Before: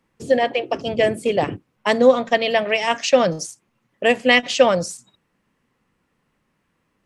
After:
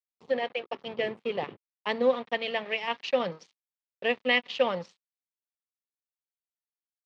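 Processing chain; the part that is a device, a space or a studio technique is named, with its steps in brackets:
blown loudspeaker (dead-zone distortion −32.5 dBFS; loudspeaker in its box 200–4,000 Hz, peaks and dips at 300 Hz −9 dB, 640 Hz −7 dB, 1,500 Hz −6 dB)
level −7.5 dB

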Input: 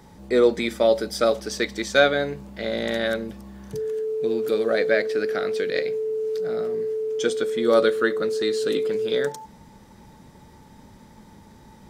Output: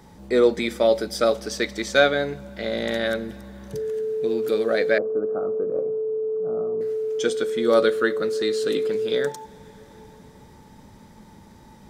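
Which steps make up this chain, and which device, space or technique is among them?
compressed reverb return (on a send at −12 dB: convolution reverb RT60 3.0 s, pre-delay 39 ms + downward compressor, threshold −32 dBFS, peak gain reduction 16 dB)
0:04.98–0:06.81: on the sum: elliptic low-pass filter 1,200 Hz, stop band 40 dB

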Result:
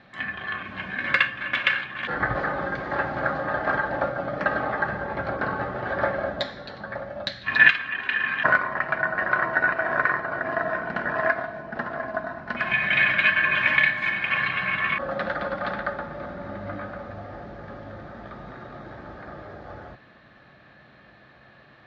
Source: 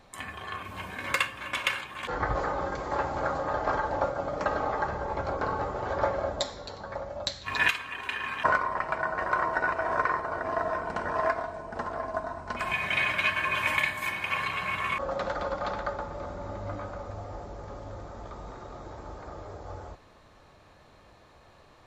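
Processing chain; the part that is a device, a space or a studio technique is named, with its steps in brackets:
guitar cabinet (loudspeaker in its box 82–4,000 Hz, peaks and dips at 89 Hz −9 dB, 130 Hz +5 dB, 210 Hz +5 dB, 450 Hz −6 dB, 960 Hz −8 dB, 1,700 Hz +9 dB)
level +4 dB

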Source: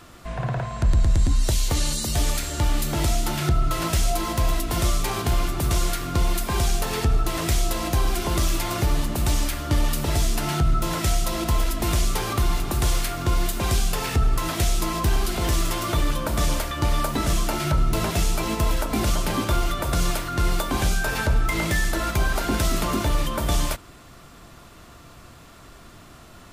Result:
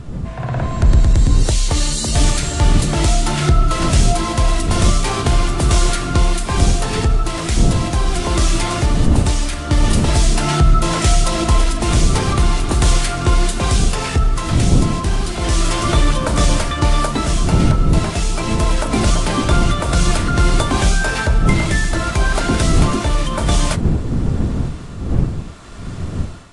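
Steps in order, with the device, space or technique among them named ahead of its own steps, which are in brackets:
smartphone video outdoors (wind on the microphone 150 Hz −26 dBFS; automatic gain control gain up to 10.5 dB; AAC 48 kbit/s 22,050 Hz)

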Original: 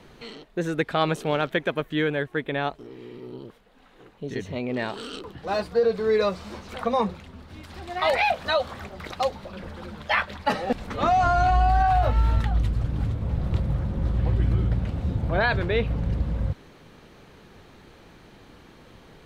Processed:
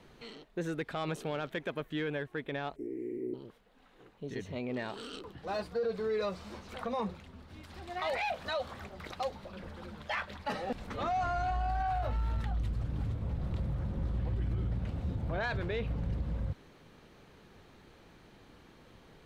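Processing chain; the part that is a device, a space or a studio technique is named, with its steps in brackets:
soft clipper into limiter (soft clipping −13.5 dBFS, distortion −21 dB; brickwall limiter −19 dBFS, peak gain reduction 5 dB)
0:02.76–0:03.34: drawn EQ curve 180 Hz 0 dB, 330 Hz +15 dB, 1,300 Hz −25 dB, 2,100 Hz +5 dB, 3,400 Hz −28 dB, 7,800 Hz +3 dB
level −7.5 dB

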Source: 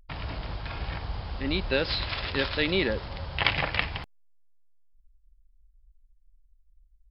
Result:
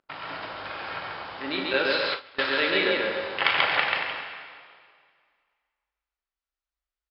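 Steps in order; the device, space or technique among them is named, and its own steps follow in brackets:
station announcement (band-pass filter 370–4,400 Hz; parametric band 1,400 Hz +5.5 dB 0.51 octaves; loudspeakers that aren't time-aligned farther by 13 metres −9 dB, 47 metres −2 dB, 79 metres −11 dB; convolution reverb RT60 2.0 s, pre-delay 4 ms, DRR 3 dB)
0:01.73–0:02.46: noise gate with hold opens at −15 dBFS

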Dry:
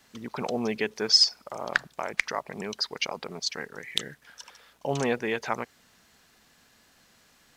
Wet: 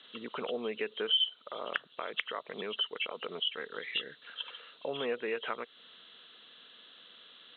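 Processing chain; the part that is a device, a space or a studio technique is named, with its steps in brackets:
hearing aid with frequency lowering (hearing-aid frequency compression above 2,600 Hz 4 to 1; downward compressor 2.5 to 1, threshold −37 dBFS, peak gain reduction 16.5 dB; loudspeaker in its box 270–6,700 Hz, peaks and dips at 470 Hz +6 dB, 820 Hz −7 dB, 1,300 Hz +6 dB, 3,500 Hz +7 dB)

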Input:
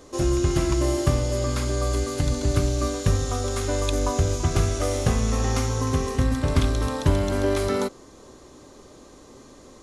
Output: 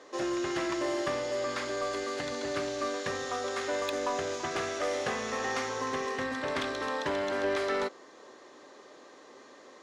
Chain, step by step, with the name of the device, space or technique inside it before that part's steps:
intercom (band-pass filter 440–4,500 Hz; parametric band 1,800 Hz +7.5 dB 0.3 octaves; soft clipping −22 dBFS, distortion −19 dB)
level −1 dB

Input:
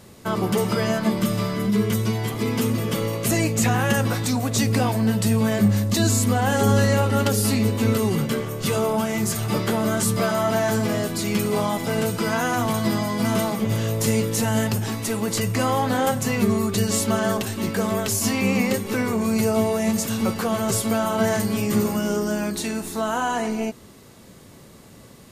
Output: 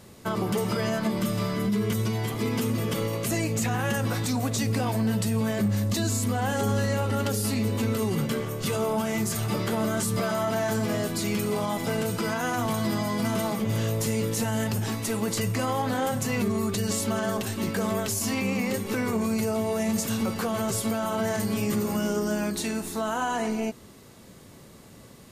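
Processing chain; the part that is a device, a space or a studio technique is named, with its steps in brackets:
clipper into limiter (hard clipping −10.5 dBFS, distortion −36 dB; brickwall limiter −15.5 dBFS, peak gain reduction 5 dB)
level −2.5 dB

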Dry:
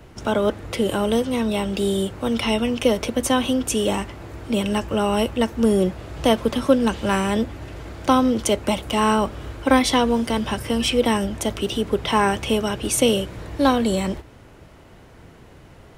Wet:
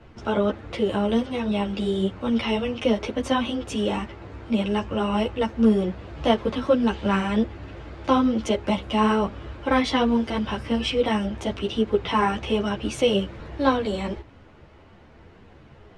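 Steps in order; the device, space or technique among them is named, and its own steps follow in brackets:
string-machine ensemble chorus (string-ensemble chorus; low-pass filter 4,100 Hz 12 dB per octave)

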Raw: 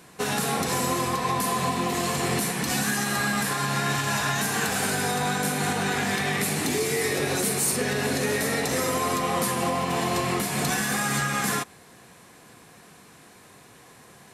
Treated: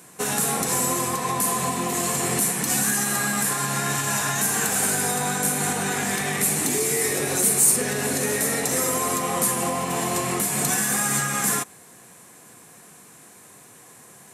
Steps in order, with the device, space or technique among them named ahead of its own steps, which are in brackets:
budget condenser microphone (high-pass filter 99 Hz; high shelf with overshoot 5,900 Hz +7 dB, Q 1.5)

